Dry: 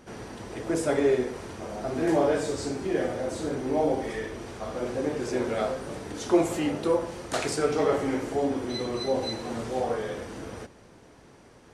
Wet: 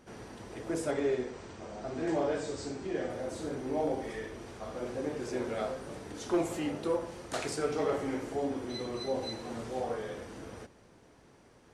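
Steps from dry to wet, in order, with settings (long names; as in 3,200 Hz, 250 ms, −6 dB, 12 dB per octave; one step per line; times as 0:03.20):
0:00.91–0:03.10: elliptic low-pass filter 8,200 Hz, stop band 40 dB
hard clipping −15.5 dBFS, distortion −24 dB
level −6.5 dB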